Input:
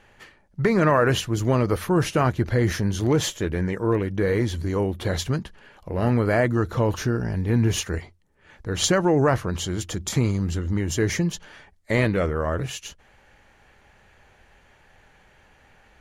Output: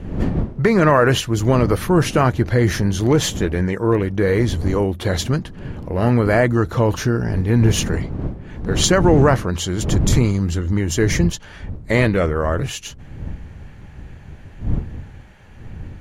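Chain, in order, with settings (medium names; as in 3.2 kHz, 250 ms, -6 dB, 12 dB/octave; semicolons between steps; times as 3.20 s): wind noise 180 Hz -31 dBFS, from 9.95 s 110 Hz; trim +5 dB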